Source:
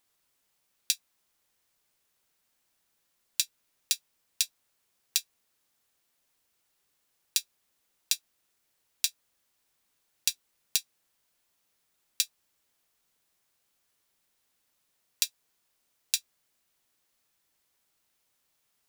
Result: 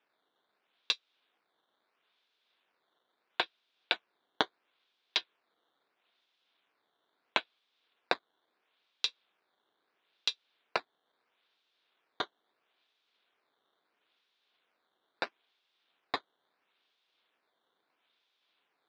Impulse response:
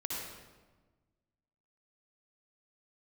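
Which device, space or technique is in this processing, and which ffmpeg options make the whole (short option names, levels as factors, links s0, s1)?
circuit-bent sampling toy: -af "acrusher=samples=10:mix=1:aa=0.000001:lfo=1:lforange=16:lforate=0.75,highpass=440,equalizer=f=570:t=q:w=4:g=-5,equalizer=f=850:t=q:w=4:g=-4,equalizer=f=1200:t=q:w=4:g=-3,equalizer=f=1900:t=q:w=4:g=-4,equalizer=f=3600:t=q:w=4:g=7,lowpass=f=4100:w=0.5412,lowpass=f=4100:w=1.3066"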